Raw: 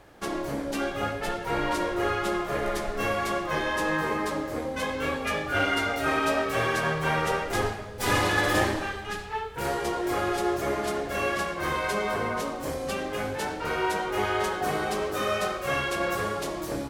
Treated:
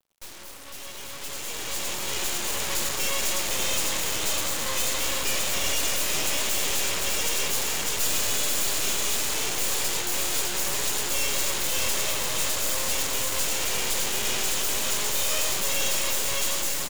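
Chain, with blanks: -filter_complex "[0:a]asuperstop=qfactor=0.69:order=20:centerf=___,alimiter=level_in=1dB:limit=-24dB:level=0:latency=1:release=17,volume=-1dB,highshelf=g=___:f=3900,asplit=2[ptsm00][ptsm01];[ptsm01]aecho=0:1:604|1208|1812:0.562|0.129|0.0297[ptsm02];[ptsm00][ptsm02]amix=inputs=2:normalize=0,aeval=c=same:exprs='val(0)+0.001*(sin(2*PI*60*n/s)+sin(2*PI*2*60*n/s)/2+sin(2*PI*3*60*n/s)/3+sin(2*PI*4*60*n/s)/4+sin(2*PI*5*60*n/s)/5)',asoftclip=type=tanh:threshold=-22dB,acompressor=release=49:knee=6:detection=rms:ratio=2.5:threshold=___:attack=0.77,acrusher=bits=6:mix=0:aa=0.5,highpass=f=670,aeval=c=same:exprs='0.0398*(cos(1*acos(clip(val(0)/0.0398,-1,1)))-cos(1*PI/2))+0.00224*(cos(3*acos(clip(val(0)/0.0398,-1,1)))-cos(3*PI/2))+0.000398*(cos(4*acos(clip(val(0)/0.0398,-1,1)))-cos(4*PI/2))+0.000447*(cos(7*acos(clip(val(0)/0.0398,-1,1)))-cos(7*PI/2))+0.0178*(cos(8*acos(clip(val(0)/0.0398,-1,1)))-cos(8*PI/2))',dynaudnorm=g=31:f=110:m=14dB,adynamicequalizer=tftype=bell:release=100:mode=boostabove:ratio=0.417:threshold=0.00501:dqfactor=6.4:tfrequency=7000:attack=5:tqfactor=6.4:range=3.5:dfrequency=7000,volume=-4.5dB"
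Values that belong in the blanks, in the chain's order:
1200, 11, -38dB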